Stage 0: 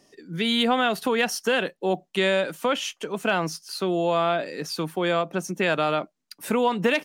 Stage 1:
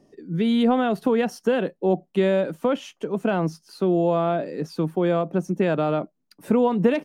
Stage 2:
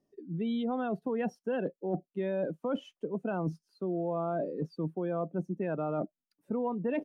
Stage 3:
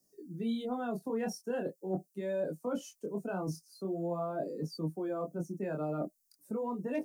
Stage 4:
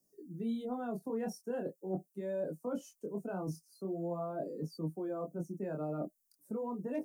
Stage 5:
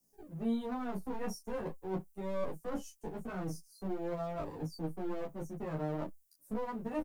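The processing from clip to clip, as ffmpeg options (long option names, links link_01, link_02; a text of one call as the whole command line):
ffmpeg -i in.wav -af "tiltshelf=frequency=970:gain=9.5,volume=-2.5dB" out.wav
ffmpeg -i in.wav -af "afftdn=noise_reduction=20:noise_floor=-29,areverse,acompressor=threshold=-30dB:ratio=6,areverse" out.wav
ffmpeg -i in.wav -filter_complex "[0:a]flanger=delay=19:depth=7.7:speed=0.42,acrossover=split=260|510|1600[link_01][link_02][link_03][link_04];[link_04]aexciter=amount=8.8:drive=7.2:freq=4700[link_05];[link_01][link_02][link_03][link_05]amix=inputs=4:normalize=0" out.wav
ffmpeg -i in.wav -af "equalizer=frequency=3100:width_type=o:width=2.1:gain=-7.5,volume=-2dB" out.wav
ffmpeg -i in.wav -filter_complex "[0:a]acrossover=split=190|1600|5800[link_01][link_02][link_03][link_04];[link_02]aeval=exprs='max(val(0),0)':channel_layout=same[link_05];[link_01][link_05][link_03][link_04]amix=inputs=4:normalize=0,asplit=2[link_06][link_07];[link_07]adelay=11.8,afreqshift=0.77[link_08];[link_06][link_08]amix=inputs=2:normalize=1,volume=6dB" out.wav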